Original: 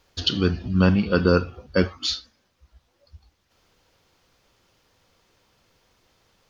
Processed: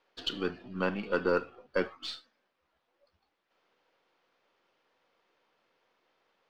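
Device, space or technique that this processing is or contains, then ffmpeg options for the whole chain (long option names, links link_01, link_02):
crystal radio: -af "highpass=350,lowpass=2800,aeval=exprs='if(lt(val(0),0),0.708*val(0),val(0))':channel_layout=same,volume=-5dB"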